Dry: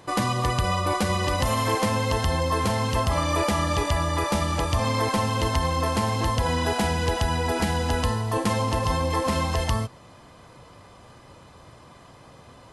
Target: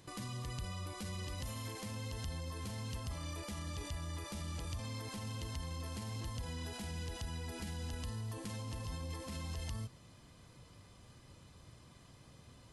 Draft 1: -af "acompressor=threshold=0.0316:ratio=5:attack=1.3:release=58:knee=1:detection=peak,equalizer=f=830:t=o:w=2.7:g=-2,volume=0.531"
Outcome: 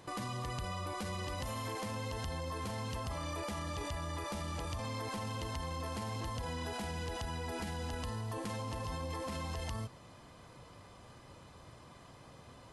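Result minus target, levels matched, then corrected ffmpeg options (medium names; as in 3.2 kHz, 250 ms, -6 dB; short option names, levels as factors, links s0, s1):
1 kHz band +6.0 dB
-af "acompressor=threshold=0.0316:ratio=5:attack=1.3:release=58:knee=1:detection=peak,equalizer=f=830:t=o:w=2.7:g=-12,volume=0.531"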